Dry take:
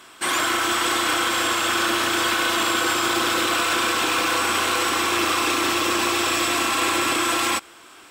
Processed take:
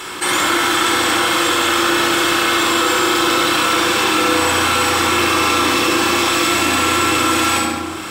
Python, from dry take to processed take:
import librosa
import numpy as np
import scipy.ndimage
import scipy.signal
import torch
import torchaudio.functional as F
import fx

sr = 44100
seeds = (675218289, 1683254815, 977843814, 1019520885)

p1 = x + fx.room_flutter(x, sr, wall_m=11.8, rt60_s=0.52, dry=0)
p2 = fx.room_shoebox(p1, sr, seeds[0], volume_m3=2400.0, walls='furnished', distance_m=4.2)
y = fx.env_flatten(p2, sr, amount_pct=50)